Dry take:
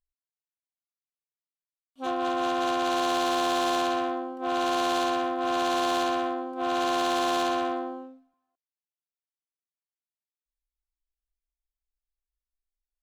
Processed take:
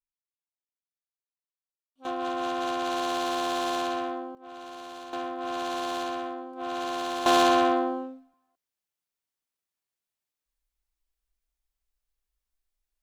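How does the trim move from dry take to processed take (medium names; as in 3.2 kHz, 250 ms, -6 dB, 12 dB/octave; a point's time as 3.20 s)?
-15 dB
from 2.05 s -3 dB
from 4.35 s -16 dB
from 5.13 s -5.5 dB
from 7.26 s +6 dB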